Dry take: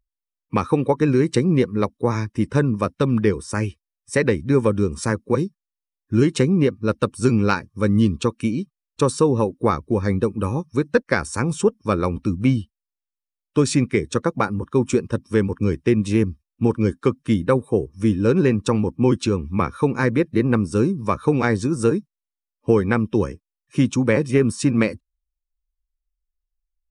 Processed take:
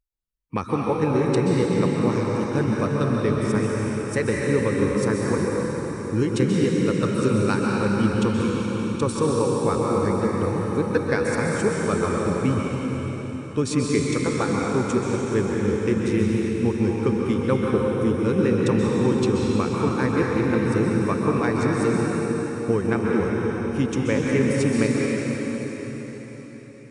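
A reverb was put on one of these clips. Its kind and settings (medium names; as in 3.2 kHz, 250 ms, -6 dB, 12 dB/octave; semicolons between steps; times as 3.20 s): plate-style reverb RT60 4.8 s, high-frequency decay 0.95×, pre-delay 115 ms, DRR -3.5 dB; trim -6 dB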